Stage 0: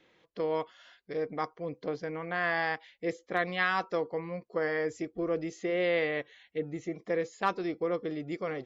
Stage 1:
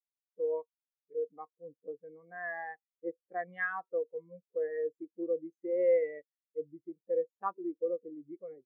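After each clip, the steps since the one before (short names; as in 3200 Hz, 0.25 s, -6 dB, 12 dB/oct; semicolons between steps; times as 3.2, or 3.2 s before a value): spectral expander 2.5:1; gain -4.5 dB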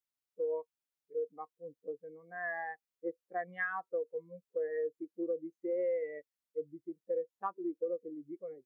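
compressor 6:1, threshold -32 dBFS, peak gain reduction 9.5 dB; gain +1 dB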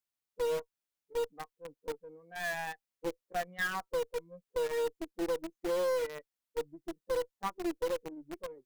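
one diode to ground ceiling -40 dBFS; in parallel at -10 dB: companded quantiser 2-bit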